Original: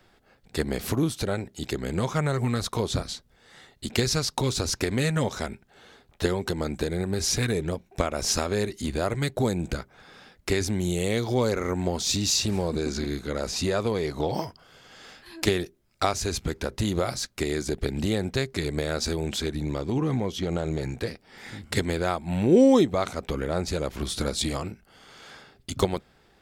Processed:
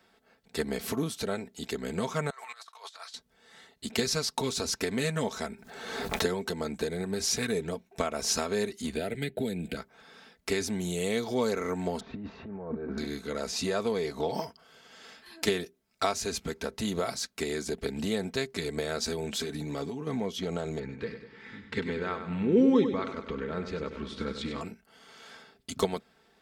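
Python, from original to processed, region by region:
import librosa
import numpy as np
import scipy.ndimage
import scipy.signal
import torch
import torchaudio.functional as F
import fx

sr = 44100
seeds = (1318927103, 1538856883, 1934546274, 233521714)

y = fx.chain(x, sr, fx.highpass(hz=840.0, slope=24),
    fx.high_shelf(hz=6300.0, db=-8.0),
    fx.over_compress(threshold_db=-43.0, ratio=-0.5), at=(2.3, 3.14))
y = fx.chain(y, sr, fx.peak_eq(hz=3000.0, db=-5.5, octaves=0.38),
    fx.pre_swell(db_per_s=42.0), at=(5.42, 6.34))
y = fx.chain(y, sr, fx.fixed_phaser(hz=2600.0, stages=4),
    fx.band_squash(depth_pct=100), at=(8.96, 9.77))
y = fx.chain(y, sr, fx.block_float(bits=7),
    fx.lowpass(hz=1600.0, slope=24),
    fx.over_compress(threshold_db=-30.0, ratio=-0.5), at=(12.0, 12.98))
y = fx.chain(y, sr, fx.high_shelf(hz=8600.0, db=4.0),
    fx.over_compress(threshold_db=-30.0, ratio=-1.0),
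    fx.comb(ms=7.1, depth=0.44), at=(19.36, 20.07))
y = fx.chain(y, sr, fx.lowpass(hz=2600.0, slope=12),
    fx.peak_eq(hz=690.0, db=-13.0, octaves=0.47),
    fx.echo_feedback(ms=98, feedback_pct=52, wet_db=-9), at=(20.79, 24.61))
y = fx.highpass(y, sr, hz=170.0, slope=6)
y = y + 0.51 * np.pad(y, (int(4.5 * sr / 1000.0), 0))[:len(y)]
y = y * 10.0 ** (-4.0 / 20.0)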